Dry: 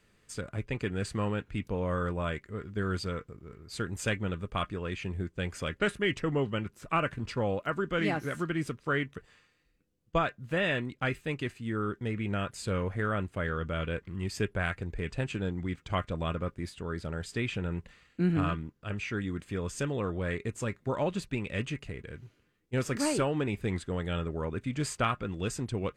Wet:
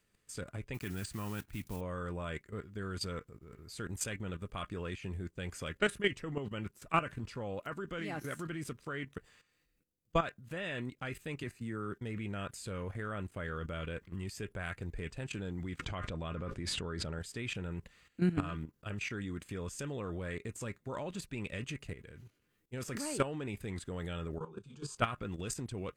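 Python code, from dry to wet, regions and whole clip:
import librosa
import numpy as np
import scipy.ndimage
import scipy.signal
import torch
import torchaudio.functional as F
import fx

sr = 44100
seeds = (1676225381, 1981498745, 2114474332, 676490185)

y = fx.chain(x, sr, fx.block_float(bits=5),
    fx.peak_eq(hz=490.0, db=-9.5, octaves=0.41), at=(0.74, 1.81))
y = fx.chain(y, sr, fx.peak_eq(hz=3200.0, db=-9.0, octaves=0.32),
    fx.band_squash(depth_pct=40), at=(11.43, 11.93))
y = fx.chain(y, sr, fx.air_absorb(metres=71.0),
    fx.env_flatten(amount_pct=70), at=(15.79, 17.19))
y = fx.chain(y, sr, fx.lowpass(hz=6200.0, slope=12),
    fx.fixed_phaser(hz=400.0, stages=8),
    fx.detune_double(cents=37), at=(24.38, 24.97))
y = fx.level_steps(y, sr, step_db=13)
y = fx.high_shelf(y, sr, hz=7700.0, db=11.5)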